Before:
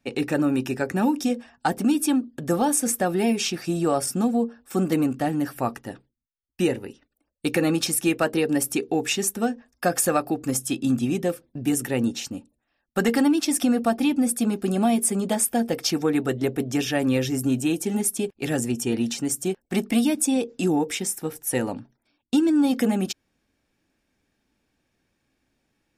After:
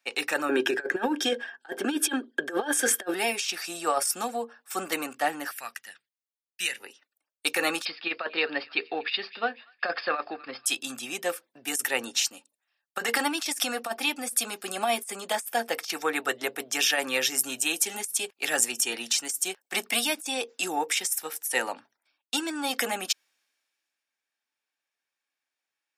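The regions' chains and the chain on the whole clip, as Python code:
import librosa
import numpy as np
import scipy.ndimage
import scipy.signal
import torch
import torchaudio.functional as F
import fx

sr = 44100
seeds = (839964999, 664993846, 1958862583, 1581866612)

y = fx.chain(x, sr, fx.high_shelf(hz=5800.0, db=-9.0),
    fx.small_body(hz=(370.0, 1600.0, 3200.0), ring_ms=25, db=17), at=(0.49, 3.14))
y = fx.chain(y, sr, fx.highpass(hz=150.0, slope=12),
    fx.band_shelf(hz=530.0, db=-15.0, octaves=2.6), at=(5.51, 6.8))
y = fx.chain(y, sr, fx.cheby1_lowpass(hz=5000.0, order=10),
    fx.peak_eq(hz=810.0, db=-5.0, octaves=0.23),
    fx.echo_wet_highpass(ms=241, feedback_pct=47, hz=1500.0, wet_db=-21.0), at=(7.85, 10.66))
y = scipy.signal.sosfilt(scipy.signal.butter(2, 990.0, 'highpass', fs=sr, output='sos'), y)
y = fx.over_compress(y, sr, threshold_db=-30.0, ratio=-0.5)
y = fx.band_widen(y, sr, depth_pct=40)
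y = y * 10.0 ** (4.5 / 20.0)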